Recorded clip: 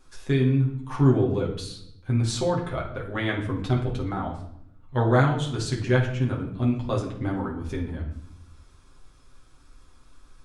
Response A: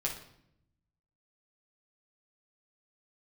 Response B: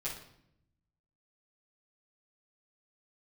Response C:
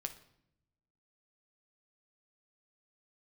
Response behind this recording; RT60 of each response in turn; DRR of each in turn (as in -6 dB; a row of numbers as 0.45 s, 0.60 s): A; 0.70 s, 0.70 s, 0.75 s; -3.0 dB, -10.5 dB, 6.0 dB